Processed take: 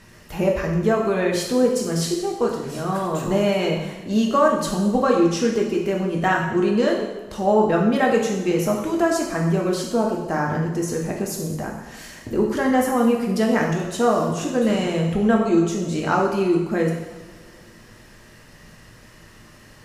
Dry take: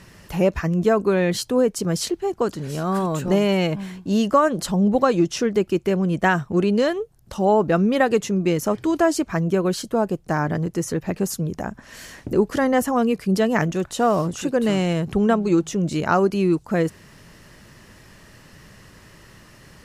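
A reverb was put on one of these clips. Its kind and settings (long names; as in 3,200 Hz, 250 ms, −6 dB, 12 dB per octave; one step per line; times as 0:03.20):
coupled-rooms reverb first 0.93 s, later 2.7 s, DRR −1.5 dB
level −3.5 dB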